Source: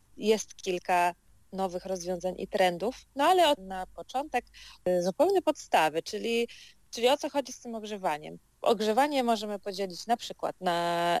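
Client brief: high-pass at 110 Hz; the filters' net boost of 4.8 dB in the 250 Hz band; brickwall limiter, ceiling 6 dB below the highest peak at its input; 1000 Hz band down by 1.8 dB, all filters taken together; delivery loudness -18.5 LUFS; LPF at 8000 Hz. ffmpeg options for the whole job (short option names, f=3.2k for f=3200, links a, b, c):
-af "highpass=110,lowpass=8k,equalizer=f=250:t=o:g=7,equalizer=f=1k:t=o:g=-3.5,volume=11.5dB,alimiter=limit=-6dB:level=0:latency=1"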